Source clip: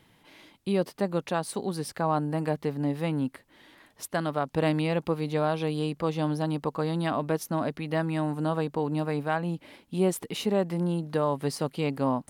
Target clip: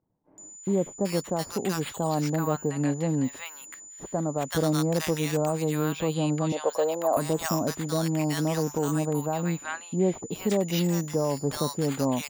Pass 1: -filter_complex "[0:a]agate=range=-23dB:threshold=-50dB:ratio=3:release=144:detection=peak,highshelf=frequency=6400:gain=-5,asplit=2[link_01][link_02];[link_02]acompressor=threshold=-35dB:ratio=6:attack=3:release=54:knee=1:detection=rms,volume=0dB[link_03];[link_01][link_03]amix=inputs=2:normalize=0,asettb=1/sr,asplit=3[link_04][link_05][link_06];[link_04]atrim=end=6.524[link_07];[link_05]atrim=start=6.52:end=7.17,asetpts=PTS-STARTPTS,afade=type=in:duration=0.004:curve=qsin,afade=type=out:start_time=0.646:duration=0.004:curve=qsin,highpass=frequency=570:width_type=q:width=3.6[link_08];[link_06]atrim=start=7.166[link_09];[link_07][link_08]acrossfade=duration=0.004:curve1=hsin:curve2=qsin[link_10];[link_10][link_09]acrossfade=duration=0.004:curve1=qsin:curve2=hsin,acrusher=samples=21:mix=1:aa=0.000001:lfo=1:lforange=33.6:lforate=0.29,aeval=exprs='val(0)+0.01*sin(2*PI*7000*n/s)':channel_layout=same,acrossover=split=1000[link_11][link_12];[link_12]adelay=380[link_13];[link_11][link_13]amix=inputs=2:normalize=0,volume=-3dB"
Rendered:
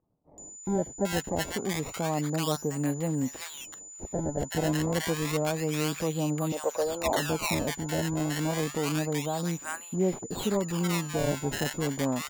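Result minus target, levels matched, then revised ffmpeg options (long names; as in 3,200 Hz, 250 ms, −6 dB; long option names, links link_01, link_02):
downward compressor: peak gain reduction +8.5 dB; sample-and-hold swept by an LFO: distortion +12 dB
-filter_complex "[0:a]agate=range=-23dB:threshold=-50dB:ratio=3:release=144:detection=peak,highshelf=frequency=6400:gain=-5,asplit=2[link_01][link_02];[link_02]acompressor=threshold=-24.5dB:ratio=6:attack=3:release=54:knee=1:detection=rms,volume=0dB[link_03];[link_01][link_03]amix=inputs=2:normalize=0,asettb=1/sr,asplit=3[link_04][link_05][link_06];[link_04]atrim=end=6.524[link_07];[link_05]atrim=start=6.52:end=7.17,asetpts=PTS-STARTPTS,afade=type=in:duration=0.004:curve=qsin,afade=type=out:start_time=0.646:duration=0.004:curve=qsin,highpass=frequency=570:width_type=q:width=3.6[link_08];[link_06]atrim=start=7.166[link_09];[link_07][link_08]acrossfade=duration=0.004:curve1=hsin:curve2=qsin[link_10];[link_10][link_09]acrossfade=duration=0.004:curve1=qsin:curve2=hsin,acrusher=samples=5:mix=1:aa=0.000001:lfo=1:lforange=8:lforate=0.29,aeval=exprs='val(0)+0.01*sin(2*PI*7000*n/s)':channel_layout=same,acrossover=split=1000[link_11][link_12];[link_12]adelay=380[link_13];[link_11][link_13]amix=inputs=2:normalize=0,volume=-3dB"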